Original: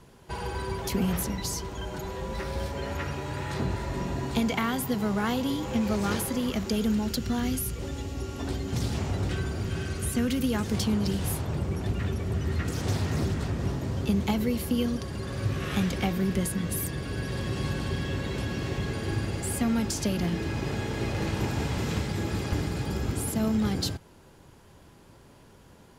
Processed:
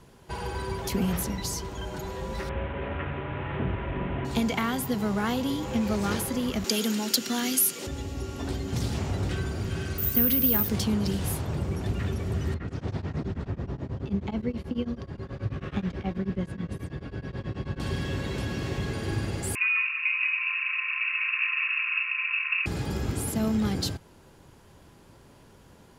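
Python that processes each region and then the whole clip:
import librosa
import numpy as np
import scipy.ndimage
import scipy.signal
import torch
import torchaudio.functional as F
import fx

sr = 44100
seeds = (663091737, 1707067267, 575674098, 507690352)

y = fx.chain(x, sr, fx.delta_mod(bps=16000, step_db=-29.5),
    fx.lowpass(hz=2400.0, slope=6),
    fx.notch(hz=880.0, q=23.0), at=(2.49, 4.25))
y = fx.chain(y, sr, fx.highpass(hz=210.0, slope=24),
    fx.high_shelf(hz=2000.0, db=11.0), at=(6.64, 7.87))
y = fx.chain(y, sr, fx.cheby1_lowpass(hz=6500.0, order=2),
    fx.resample_bad(factor=3, down='filtered', up='zero_stuff'), at=(9.98, 10.69))
y = fx.chain(y, sr, fx.spacing_loss(db_at_10k=24),
    fx.tremolo_abs(hz=9.3), at=(12.54, 17.8))
y = fx.chain(y, sr, fx.echo_single(ms=195, db=-9.5),
    fx.freq_invert(carrier_hz=2700),
    fx.brickwall_highpass(low_hz=1000.0), at=(19.55, 22.66))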